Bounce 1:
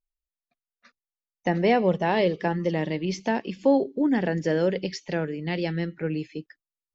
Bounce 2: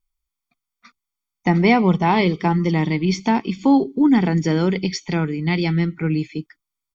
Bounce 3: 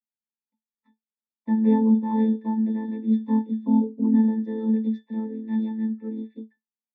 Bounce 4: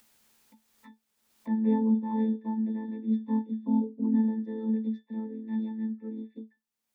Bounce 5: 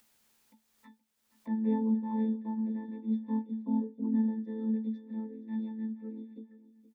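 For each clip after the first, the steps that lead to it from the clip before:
comb filter 0.9 ms, depth 78%; level +6 dB
channel vocoder with a chord as carrier minor triad, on A3; resonances in every octave A, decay 0.13 s
upward compression, threshold −30 dBFS; level −6 dB
repeating echo 472 ms, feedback 30%, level −16 dB; level −4 dB

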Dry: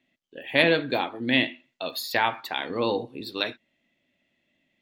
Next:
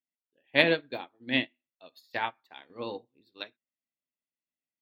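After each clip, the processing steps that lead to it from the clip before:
parametric band 11,000 Hz −8 dB 0.59 octaves
expander for the loud parts 2.5 to 1, over −37 dBFS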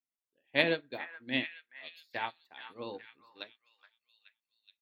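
echo through a band-pass that steps 423 ms, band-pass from 1,400 Hz, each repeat 0.7 octaves, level −10 dB
level −5 dB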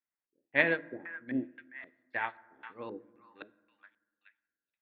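auto-filter low-pass square 1.9 Hz 350–1,800 Hz
on a send at −18.5 dB: convolution reverb RT60 1.3 s, pre-delay 5 ms
on the sum: level −1.5 dB

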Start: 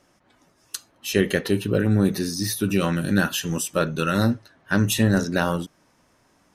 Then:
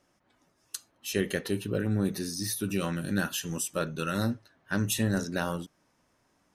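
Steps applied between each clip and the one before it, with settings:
dynamic equaliser 9,400 Hz, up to +5 dB, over −42 dBFS, Q 0.7
level −8.5 dB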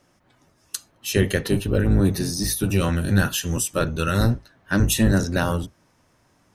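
sub-octave generator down 1 octave, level 0 dB
level +7.5 dB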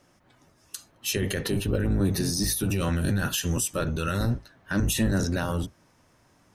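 brickwall limiter −16.5 dBFS, peak gain reduction 11 dB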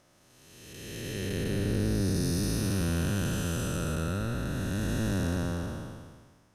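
spectrum smeared in time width 748 ms

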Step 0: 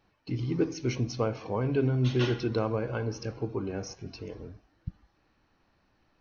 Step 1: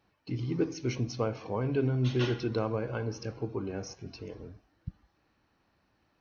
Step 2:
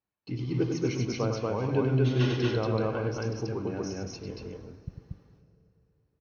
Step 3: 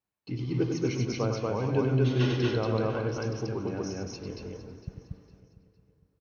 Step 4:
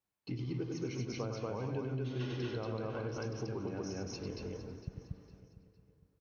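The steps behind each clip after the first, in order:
high-pass filter 45 Hz; level −2 dB
noise gate with hold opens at −58 dBFS; on a send: loudspeakers that aren't time-aligned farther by 34 metres −6 dB, 80 metres −1 dB; on the sum: dense smooth reverb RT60 3.4 s, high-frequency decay 0.75×, DRR 14.5 dB
repeating echo 457 ms, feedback 40%, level −16.5 dB
downward compressor 5 to 1, threshold −34 dBFS, peak gain reduction 13 dB; level −1.5 dB

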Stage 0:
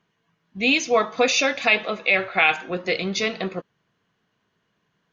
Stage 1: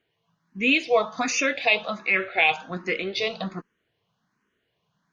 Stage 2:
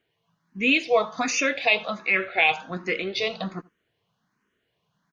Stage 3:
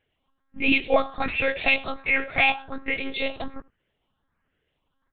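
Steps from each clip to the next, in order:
frequency shifter mixed with the dry sound +1.3 Hz
single-tap delay 83 ms −24 dB
one-pitch LPC vocoder at 8 kHz 270 Hz

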